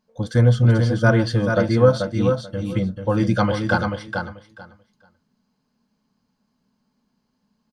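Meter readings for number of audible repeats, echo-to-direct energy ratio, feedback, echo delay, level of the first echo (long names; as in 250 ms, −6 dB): 2, −5.5 dB, 17%, 437 ms, −5.5 dB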